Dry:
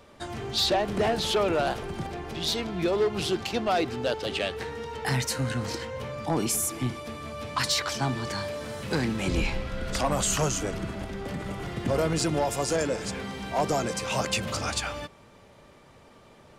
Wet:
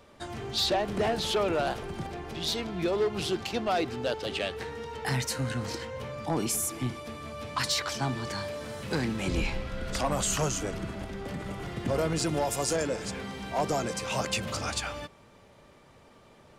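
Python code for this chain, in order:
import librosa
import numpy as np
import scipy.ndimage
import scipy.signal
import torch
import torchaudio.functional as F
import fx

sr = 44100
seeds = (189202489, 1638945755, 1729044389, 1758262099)

y = fx.high_shelf(x, sr, hz=fx.line((12.26, 9300.0), (12.72, 5100.0)), db=6.5, at=(12.26, 12.72), fade=0.02)
y = y * librosa.db_to_amplitude(-2.5)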